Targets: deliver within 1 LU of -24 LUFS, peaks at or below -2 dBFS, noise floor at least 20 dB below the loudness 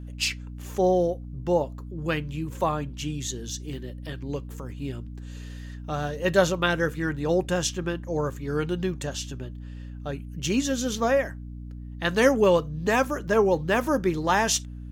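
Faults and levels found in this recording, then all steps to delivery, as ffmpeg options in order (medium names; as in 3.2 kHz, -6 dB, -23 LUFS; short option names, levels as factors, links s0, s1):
hum 60 Hz; highest harmonic 300 Hz; hum level -35 dBFS; loudness -26.0 LUFS; peak level -7.0 dBFS; loudness target -24.0 LUFS
-> -af "bandreject=f=60:t=h:w=4,bandreject=f=120:t=h:w=4,bandreject=f=180:t=h:w=4,bandreject=f=240:t=h:w=4,bandreject=f=300:t=h:w=4"
-af "volume=1.26"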